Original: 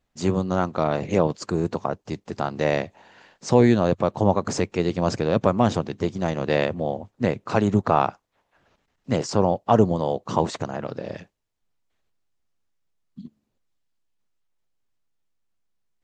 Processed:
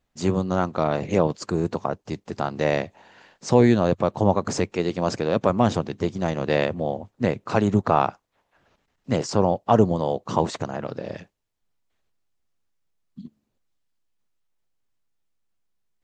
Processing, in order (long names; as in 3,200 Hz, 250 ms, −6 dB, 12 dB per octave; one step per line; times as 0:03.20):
0:04.72–0:05.50: low-shelf EQ 110 Hz −10 dB